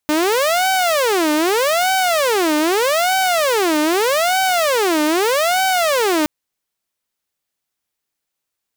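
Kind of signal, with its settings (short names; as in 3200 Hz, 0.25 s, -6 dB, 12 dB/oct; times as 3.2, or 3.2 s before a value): siren wail 301–762 Hz 0.81/s saw -11.5 dBFS 6.17 s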